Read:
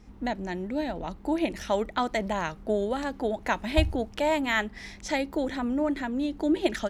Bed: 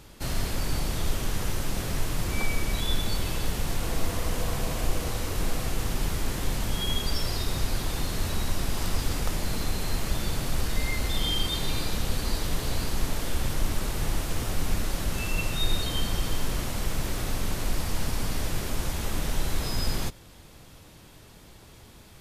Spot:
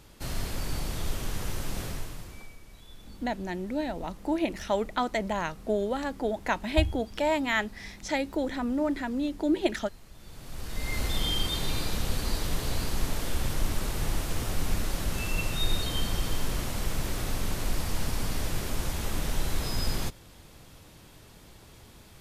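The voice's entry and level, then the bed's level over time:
3.00 s, −1.0 dB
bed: 0:01.85 −4 dB
0:02.59 −23 dB
0:10.12 −23 dB
0:10.98 −1.5 dB

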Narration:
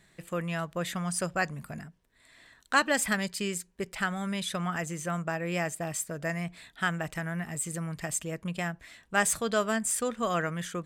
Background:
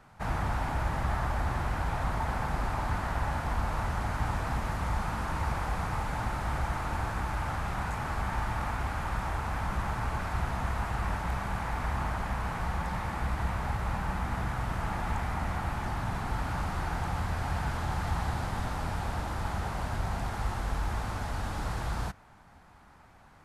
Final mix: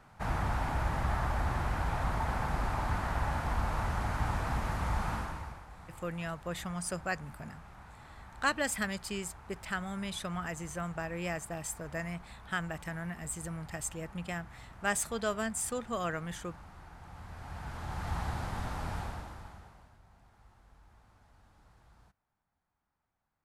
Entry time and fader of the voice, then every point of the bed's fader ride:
5.70 s, −5.5 dB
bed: 0:05.15 −1.5 dB
0:05.66 −19 dB
0:16.98 −19 dB
0:18.15 −4 dB
0:18.99 −4 dB
0:20.00 −29 dB

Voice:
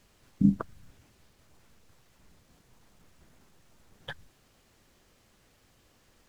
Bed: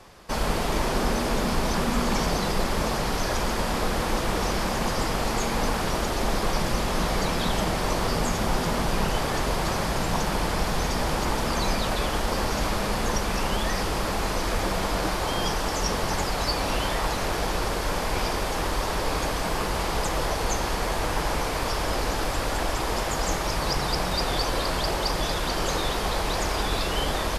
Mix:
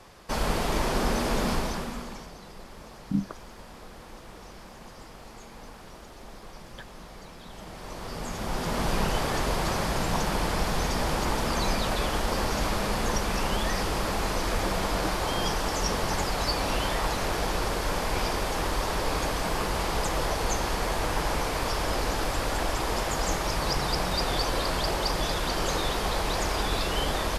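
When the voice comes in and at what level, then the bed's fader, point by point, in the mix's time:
2.70 s, −5.0 dB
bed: 0:01.52 −1.5 dB
0:02.32 −20 dB
0:07.44 −20 dB
0:08.87 −1.5 dB

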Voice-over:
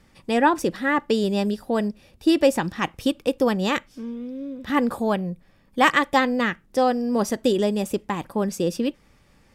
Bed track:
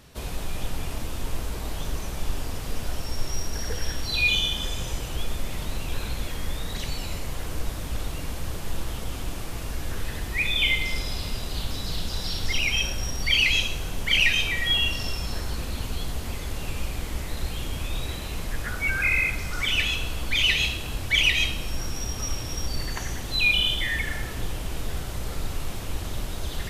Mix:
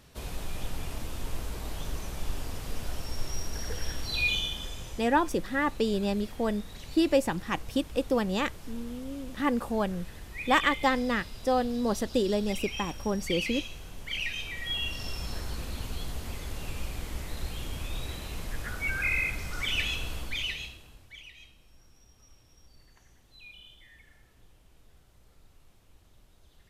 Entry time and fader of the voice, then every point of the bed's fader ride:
4.70 s, −6.0 dB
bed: 0:04.22 −5 dB
0:05.17 −13 dB
0:14.33 −13 dB
0:15.22 −5.5 dB
0:20.16 −5.5 dB
0:21.26 −29 dB

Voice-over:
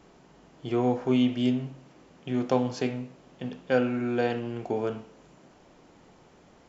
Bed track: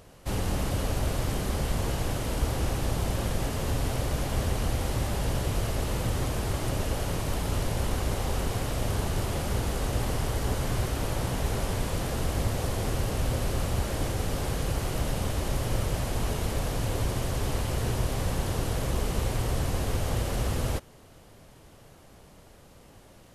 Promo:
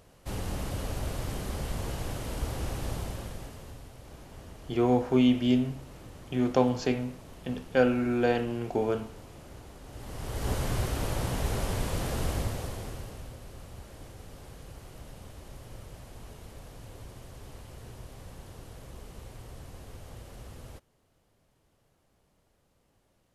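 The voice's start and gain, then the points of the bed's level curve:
4.05 s, +1.0 dB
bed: 0:02.94 −5.5 dB
0:03.91 −20 dB
0:09.83 −20 dB
0:10.50 −1.5 dB
0:12.30 −1.5 dB
0:13.38 −17.5 dB

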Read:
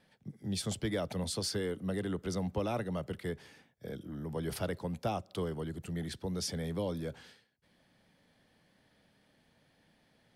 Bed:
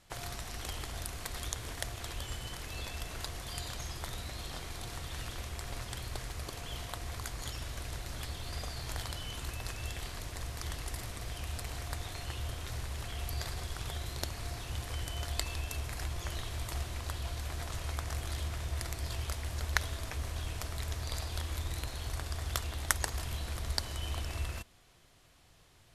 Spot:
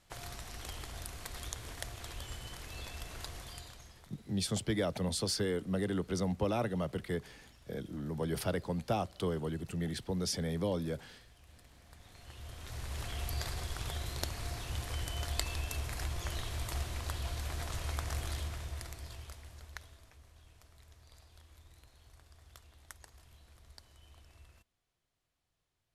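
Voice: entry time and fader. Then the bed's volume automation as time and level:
3.85 s, +1.5 dB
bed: 0:03.41 −4 dB
0:04.13 −20.5 dB
0:11.83 −20.5 dB
0:12.98 0 dB
0:18.25 0 dB
0:20.24 −22 dB

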